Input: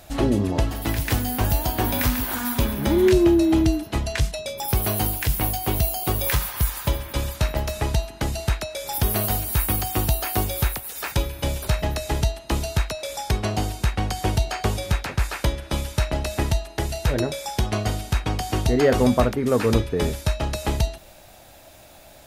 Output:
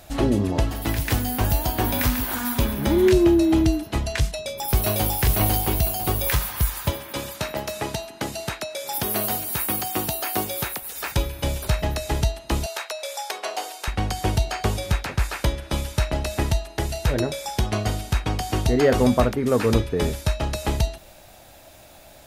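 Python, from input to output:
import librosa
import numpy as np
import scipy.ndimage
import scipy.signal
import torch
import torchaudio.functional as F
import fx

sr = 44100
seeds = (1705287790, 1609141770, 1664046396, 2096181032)

y = fx.echo_throw(x, sr, start_s=4.23, length_s=0.99, ms=500, feedback_pct=30, wet_db=-1.0)
y = fx.highpass(y, sr, hz=180.0, slope=12, at=(6.9, 10.82))
y = fx.highpass(y, sr, hz=490.0, slope=24, at=(12.66, 13.88))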